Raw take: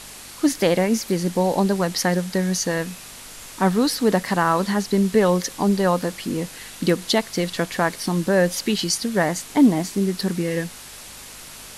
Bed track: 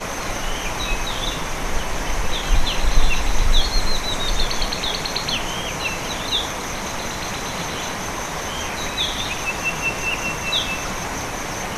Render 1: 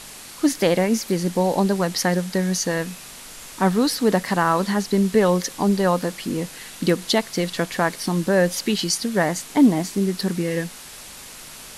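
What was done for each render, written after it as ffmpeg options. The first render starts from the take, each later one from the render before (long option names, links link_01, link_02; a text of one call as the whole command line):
ffmpeg -i in.wav -af "bandreject=frequency=50:width_type=h:width=4,bandreject=frequency=100:width_type=h:width=4" out.wav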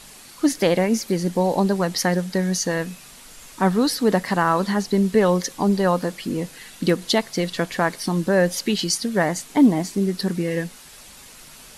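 ffmpeg -i in.wav -af "afftdn=noise_reduction=6:noise_floor=-40" out.wav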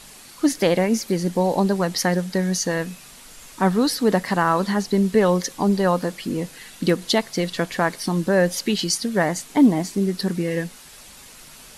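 ffmpeg -i in.wav -af anull out.wav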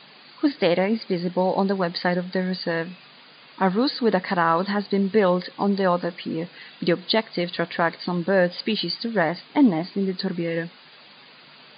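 ffmpeg -i in.wav -af "afftfilt=real='re*between(b*sr/4096,110,4900)':imag='im*between(b*sr/4096,110,4900)':win_size=4096:overlap=0.75,lowshelf=frequency=230:gain=-6" out.wav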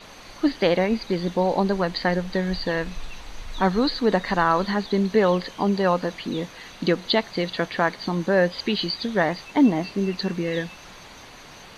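ffmpeg -i in.wav -i bed.wav -filter_complex "[1:a]volume=-19.5dB[link_01];[0:a][link_01]amix=inputs=2:normalize=0" out.wav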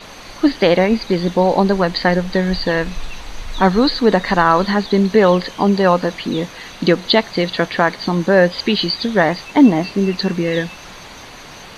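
ffmpeg -i in.wav -af "volume=7.5dB,alimiter=limit=-1dB:level=0:latency=1" out.wav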